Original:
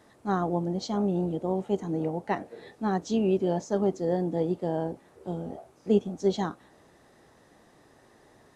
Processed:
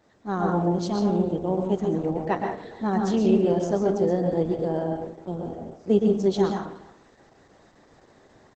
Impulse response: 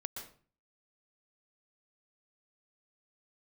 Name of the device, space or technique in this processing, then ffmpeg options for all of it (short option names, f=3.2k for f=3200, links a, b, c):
speakerphone in a meeting room: -filter_complex "[1:a]atrim=start_sample=2205[a];[0:a][a]afir=irnorm=-1:irlink=0,asplit=2[b][c];[c]adelay=290,highpass=300,lowpass=3.4k,asoftclip=type=hard:threshold=-23.5dB,volume=-19dB[d];[b][d]amix=inputs=2:normalize=0,dynaudnorm=f=230:g=3:m=5.5dB" -ar 48000 -c:a libopus -b:a 12k